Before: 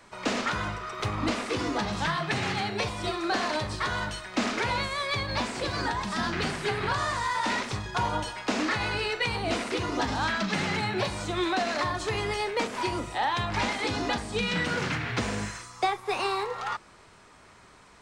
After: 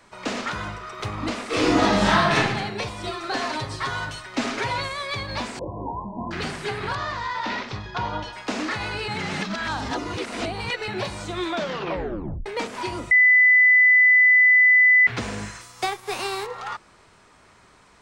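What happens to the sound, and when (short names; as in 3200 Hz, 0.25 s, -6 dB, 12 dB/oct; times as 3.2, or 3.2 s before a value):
1.48–2.36 reverb throw, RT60 0.92 s, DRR -10 dB
3.11–4.92 comb 7.4 ms
5.59–6.31 brick-wall FIR low-pass 1100 Hz
6.95–8.33 LPF 5200 Hz 24 dB/oct
9.08–10.88 reverse
11.47 tape stop 0.99 s
13.11–15.07 bleep 2000 Hz -11.5 dBFS
15.6–16.45 spectral whitening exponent 0.6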